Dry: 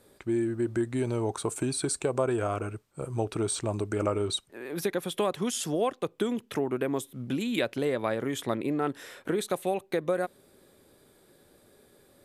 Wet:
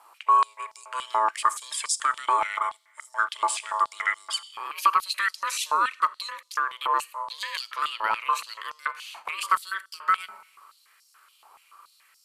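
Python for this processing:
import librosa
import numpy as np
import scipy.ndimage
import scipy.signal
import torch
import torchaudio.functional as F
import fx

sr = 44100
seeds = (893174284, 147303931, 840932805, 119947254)

y = x * np.sin(2.0 * np.pi * 760.0 * np.arange(len(x)) / sr)
y = fx.rev_schroeder(y, sr, rt60_s=0.89, comb_ms=29, drr_db=17.5)
y = fx.filter_held_highpass(y, sr, hz=7.0, low_hz=870.0, high_hz=5300.0)
y = y * librosa.db_to_amplitude(4.0)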